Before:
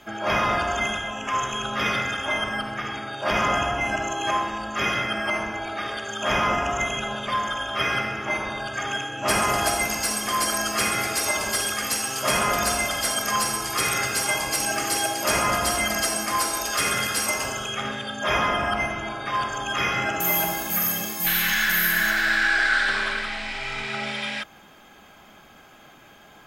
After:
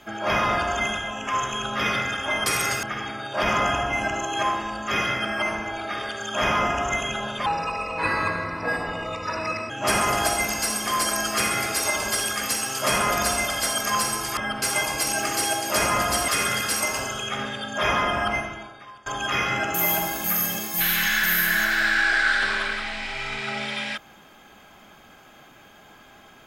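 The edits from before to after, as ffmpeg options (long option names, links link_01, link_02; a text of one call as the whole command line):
ffmpeg -i in.wav -filter_complex "[0:a]asplit=9[link_01][link_02][link_03][link_04][link_05][link_06][link_07][link_08][link_09];[link_01]atrim=end=2.462[link_10];[link_02]atrim=start=13.778:end=14.152[link_11];[link_03]atrim=start=2.708:end=7.344[link_12];[link_04]atrim=start=7.34:end=9.11,asetpts=PTS-STARTPTS,asetrate=34839,aresample=44100,atrim=end_sample=98806,asetpts=PTS-STARTPTS[link_13];[link_05]atrim=start=9.106:end=13.782[link_14];[link_06]atrim=start=2.458:end=2.712[link_15];[link_07]atrim=start=14.148:end=15.812[link_16];[link_08]atrim=start=16.738:end=19.52,asetpts=PTS-STARTPTS,afade=type=out:start_time=2.062:duration=0.72:curve=qua:silence=0.0707946[link_17];[link_09]atrim=start=19.52,asetpts=PTS-STARTPTS,afade=type=in:duration=0.004:curve=hsin:silence=0.0707946[link_18];[link_10][link_11]acrossfade=duration=0.004:curve1=hsin:curve2=hsin[link_19];[link_19][link_12]acrossfade=duration=0.004:curve1=hsin:curve2=hsin[link_20];[link_20][link_13]acrossfade=duration=0.004:curve1=hsin:curve2=hsin[link_21];[link_21][link_14]acrossfade=duration=0.004:curve1=hsin:curve2=hsin[link_22];[link_22][link_15]acrossfade=duration=0.004:curve1=hsin:curve2=hsin[link_23];[link_23][link_16]acrossfade=duration=0.004:curve1=hsin:curve2=hsin[link_24];[link_17][link_18]concat=n=2:v=0:a=1[link_25];[link_24][link_25]acrossfade=duration=0.004:curve1=hsin:curve2=hsin" out.wav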